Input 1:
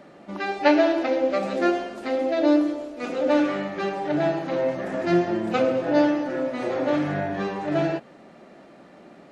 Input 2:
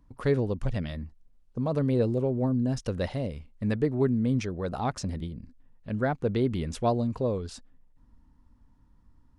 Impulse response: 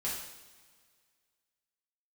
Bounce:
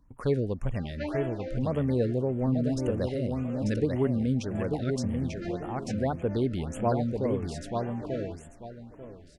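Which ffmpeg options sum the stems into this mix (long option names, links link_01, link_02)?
-filter_complex "[0:a]adelay=350,volume=-14.5dB,asplit=2[link_01][link_02];[link_02]volume=-16.5dB[link_03];[1:a]volume=-1.5dB,asplit=3[link_04][link_05][link_06];[link_05]volume=-4.5dB[link_07];[link_06]apad=whole_len=426244[link_08];[link_01][link_08]sidechaincompress=threshold=-36dB:ratio=8:attack=34:release=308[link_09];[link_03][link_07]amix=inputs=2:normalize=0,aecho=0:1:891|1782|2673|3564:1|0.25|0.0625|0.0156[link_10];[link_09][link_04][link_10]amix=inputs=3:normalize=0,afftfilt=real='re*(1-between(b*sr/1024,890*pow(5000/890,0.5+0.5*sin(2*PI*1.8*pts/sr))/1.41,890*pow(5000/890,0.5+0.5*sin(2*PI*1.8*pts/sr))*1.41))':imag='im*(1-between(b*sr/1024,890*pow(5000/890,0.5+0.5*sin(2*PI*1.8*pts/sr))/1.41,890*pow(5000/890,0.5+0.5*sin(2*PI*1.8*pts/sr))*1.41))':win_size=1024:overlap=0.75"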